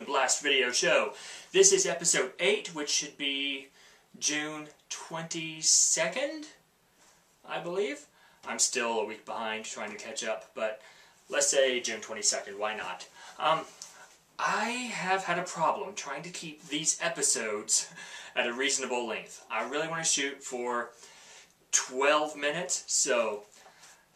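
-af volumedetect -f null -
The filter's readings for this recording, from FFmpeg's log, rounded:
mean_volume: -31.3 dB
max_volume: -6.1 dB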